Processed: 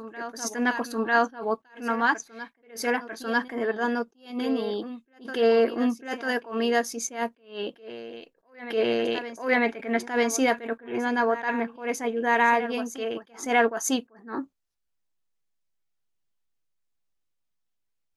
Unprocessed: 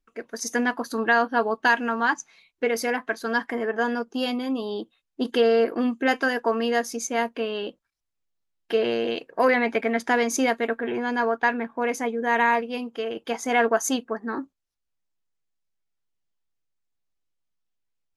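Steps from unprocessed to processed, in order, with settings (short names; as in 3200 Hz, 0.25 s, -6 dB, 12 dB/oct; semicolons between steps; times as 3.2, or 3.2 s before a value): reverse echo 0.946 s -14 dB; attack slew limiter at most 160 dB/s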